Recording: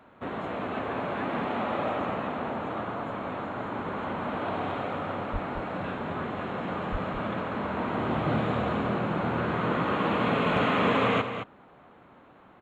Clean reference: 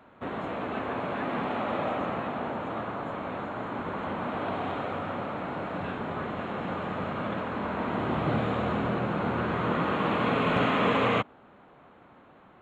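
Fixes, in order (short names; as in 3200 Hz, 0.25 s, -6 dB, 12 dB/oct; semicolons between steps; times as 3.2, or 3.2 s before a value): 5.32–5.44 HPF 140 Hz 24 dB/oct; 6.91–7.03 HPF 140 Hz 24 dB/oct; inverse comb 0.216 s -9 dB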